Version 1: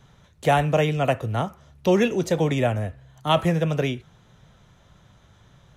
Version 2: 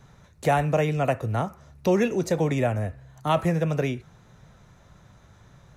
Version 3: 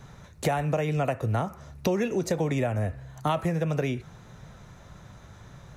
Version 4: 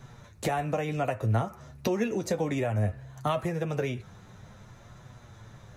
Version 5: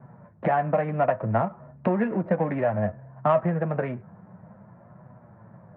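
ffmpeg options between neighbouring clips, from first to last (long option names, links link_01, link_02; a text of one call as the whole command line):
ffmpeg -i in.wav -filter_complex "[0:a]asplit=2[link_01][link_02];[link_02]acompressor=threshold=-27dB:ratio=6,volume=0dB[link_03];[link_01][link_03]amix=inputs=2:normalize=0,equalizer=frequency=3200:width=4.2:gain=-9.5,volume=-4.5dB" out.wav
ffmpeg -i in.wav -af "acompressor=threshold=-28dB:ratio=6,volume=5dB" out.wav
ffmpeg -i in.wav -af "flanger=delay=7.9:depth=2.6:regen=36:speed=0.59:shape=triangular,volume=2dB" out.wav
ffmpeg -i in.wav -af "adynamicsmooth=sensitivity=4:basefreq=770,highpass=160,equalizer=frequency=180:width_type=q:width=4:gain=8,equalizer=frequency=290:width_type=q:width=4:gain=-3,equalizer=frequency=410:width_type=q:width=4:gain=-6,equalizer=frequency=630:width_type=q:width=4:gain=6,equalizer=frequency=980:width_type=q:width=4:gain=5,equalizer=frequency=1700:width_type=q:width=4:gain=4,lowpass=frequency=2200:width=0.5412,lowpass=frequency=2200:width=1.3066,volume=4dB" out.wav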